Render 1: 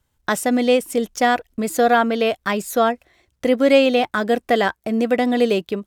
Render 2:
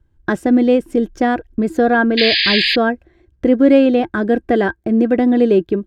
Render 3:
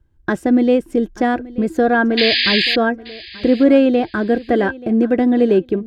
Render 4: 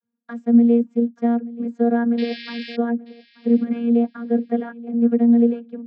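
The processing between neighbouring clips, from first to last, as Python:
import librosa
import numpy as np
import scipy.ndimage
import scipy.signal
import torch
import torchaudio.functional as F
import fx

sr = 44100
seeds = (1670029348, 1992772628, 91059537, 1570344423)

y1 = fx.riaa(x, sr, side='playback')
y1 = fx.small_body(y1, sr, hz=(340.0, 1600.0), ring_ms=50, db=14)
y1 = fx.spec_paint(y1, sr, seeds[0], shape='noise', start_s=2.17, length_s=0.59, low_hz=1600.0, high_hz=5000.0, level_db=-13.0)
y1 = F.gain(torch.from_numpy(y1), -3.0).numpy()
y2 = fx.echo_feedback(y1, sr, ms=881, feedback_pct=27, wet_db=-19.5)
y2 = F.gain(torch.from_numpy(y2), -1.0).numpy()
y3 = fx.vocoder(y2, sr, bands=32, carrier='saw', carrier_hz=235.0)
y3 = F.gain(torch.from_numpy(y3), -2.5).numpy()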